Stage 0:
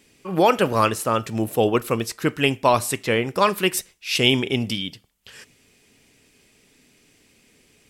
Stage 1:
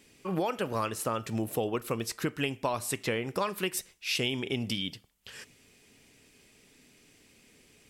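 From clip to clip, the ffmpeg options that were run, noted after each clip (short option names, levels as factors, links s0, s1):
-af "acompressor=threshold=0.0562:ratio=6,volume=0.75"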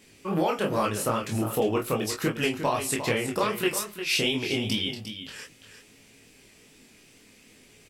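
-filter_complex "[0:a]flanger=delay=22.5:depth=7.7:speed=2.5,asplit=2[s0][s1];[s1]adelay=19,volume=0.473[s2];[s0][s2]amix=inputs=2:normalize=0,aecho=1:1:353:0.316,volume=2.24"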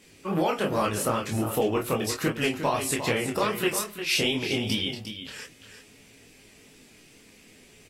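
-ar 44100 -c:a aac -b:a 48k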